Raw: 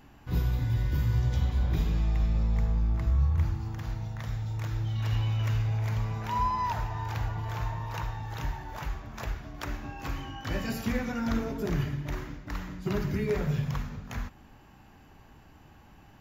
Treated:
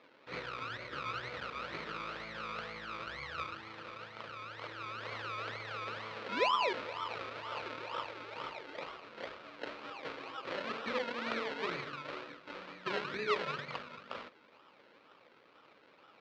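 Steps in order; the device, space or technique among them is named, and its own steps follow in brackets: circuit-bent sampling toy (decimation with a swept rate 29×, swing 60% 2.1 Hz; speaker cabinet 490–4300 Hz, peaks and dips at 510 Hz +6 dB, 760 Hz -7 dB, 1300 Hz +7 dB, 2400 Hz +5 dB, 4100 Hz +3 dB); gain -1.5 dB

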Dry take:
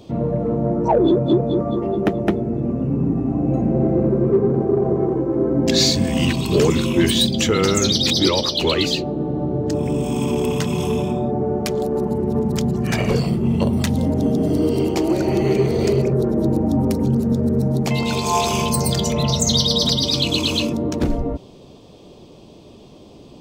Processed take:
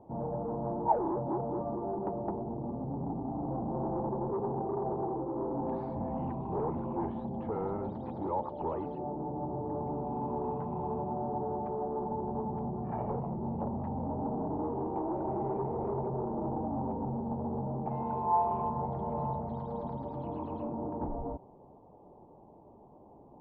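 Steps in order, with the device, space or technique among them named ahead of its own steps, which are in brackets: overdriven synthesiser ladder filter (soft clip -17 dBFS, distortion -13 dB; ladder low-pass 930 Hz, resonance 75%); gain -2.5 dB

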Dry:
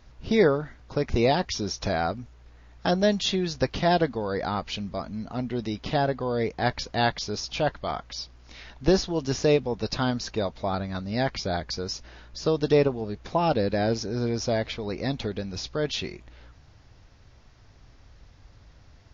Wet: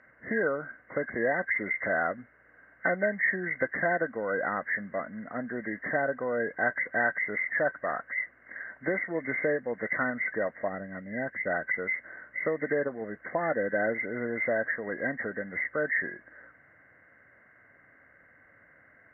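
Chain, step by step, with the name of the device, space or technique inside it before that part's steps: 10.68–11.47 bell 1500 Hz -11.5 dB 2.4 oct; hearing aid with frequency lowering (nonlinear frequency compression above 1500 Hz 4:1; compressor 3:1, threshold -24 dBFS, peak gain reduction 7.5 dB; speaker cabinet 280–6500 Hz, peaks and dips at 390 Hz -6 dB, 560 Hz +4 dB, 880 Hz -9 dB, 1500 Hz +8 dB, 3200 Hz -9 dB)

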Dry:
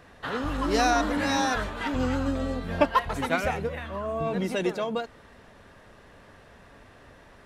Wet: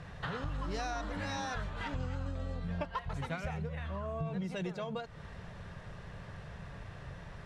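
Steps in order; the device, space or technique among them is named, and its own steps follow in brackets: jukebox (LPF 7800 Hz 12 dB/oct; resonant low shelf 200 Hz +7 dB, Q 3; compressor 4:1, threshold -38 dBFS, peak gain reduction 18 dB); gain +1 dB

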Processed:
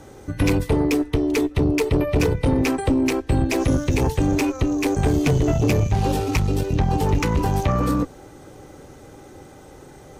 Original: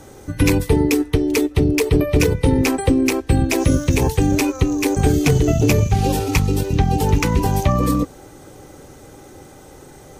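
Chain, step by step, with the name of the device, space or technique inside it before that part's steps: tube preamp driven hard (tube stage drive 12 dB, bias 0.4; high shelf 6200 Hz -7.5 dB)

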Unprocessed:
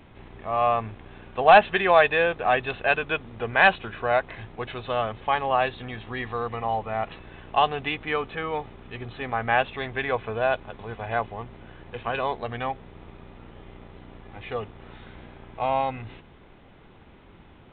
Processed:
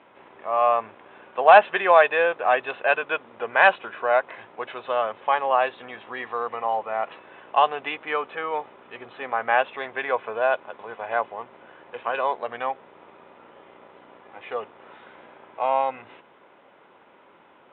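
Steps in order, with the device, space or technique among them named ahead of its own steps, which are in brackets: phone earpiece (speaker cabinet 360–3400 Hz, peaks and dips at 560 Hz +6 dB, 980 Hz +6 dB, 1400 Hz +4 dB); gain -1 dB

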